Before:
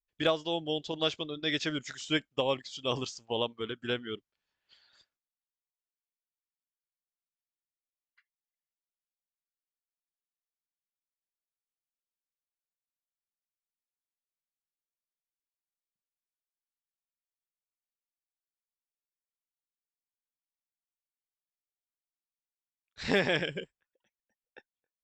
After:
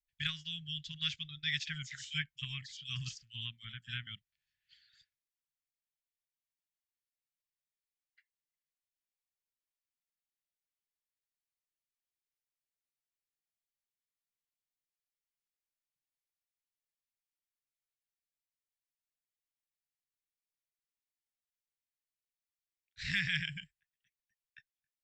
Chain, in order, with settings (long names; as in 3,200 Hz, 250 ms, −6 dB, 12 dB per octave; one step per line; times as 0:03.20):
elliptic band-stop filter 150–1,800 Hz, stop band 50 dB
high-shelf EQ 5,200 Hz −5.5 dB
0:01.63–0:04.07: multiband delay without the direct sound highs, lows 40 ms, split 3,600 Hz